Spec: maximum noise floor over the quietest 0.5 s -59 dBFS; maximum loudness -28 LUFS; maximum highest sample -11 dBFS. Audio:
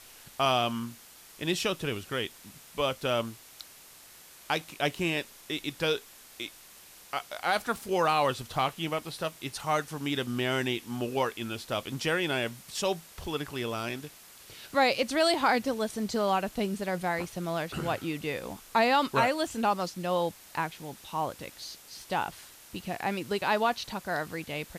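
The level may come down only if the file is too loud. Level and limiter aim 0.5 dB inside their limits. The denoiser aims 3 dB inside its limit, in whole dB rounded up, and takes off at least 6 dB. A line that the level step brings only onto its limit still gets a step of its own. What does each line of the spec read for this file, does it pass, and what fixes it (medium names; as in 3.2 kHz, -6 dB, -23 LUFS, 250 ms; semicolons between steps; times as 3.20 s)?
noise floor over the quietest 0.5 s -52 dBFS: fail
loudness -30.5 LUFS: pass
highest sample -13.0 dBFS: pass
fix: noise reduction 10 dB, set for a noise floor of -52 dBFS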